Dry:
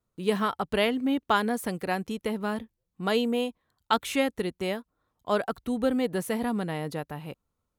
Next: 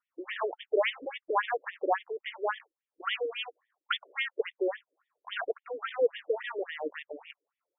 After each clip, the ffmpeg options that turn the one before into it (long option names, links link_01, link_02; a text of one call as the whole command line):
ffmpeg -i in.wav -af "tremolo=f=2:d=0.29,acrusher=bits=3:mode=log:mix=0:aa=0.000001,afftfilt=real='re*between(b*sr/1024,410*pow(2600/410,0.5+0.5*sin(2*PI*3.6*pts/sr))/1.41,410*pow(2600/410,0.5+0.5*sin(2*PI*3.6*pts/sr))*1.41)':imag='im*between(b*sr/1024,410*pow(2600/410,0.5+0.5*sin(2*PI*3.6*pts/sr))/1.41,410*pow(2600/410,0.5+0.5*sin(2*PI*3.6*pts/sr))*1.41)':win_size=1024:overlap=0.75,volume=5.5dB" out.wav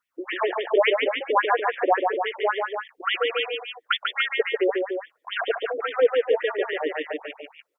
ffmpeg -i in.wav -af "aecho=1:1:142.9|291.5:0.631|0.447,volume=7dB" out.wav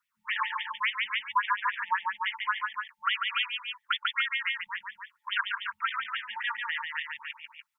ffmpeg -i in.wav -af "afftfilt=real='re*(1-between(b*sr/4096,230,880))':imag='im*(1-between(b*sr/4096,230,880))':win_size=4096:overlap=0.75,lowshelf=frequency=230:gain=-4,alimiter=limit=-16dB:level=0:latency=1:release=302" out.wav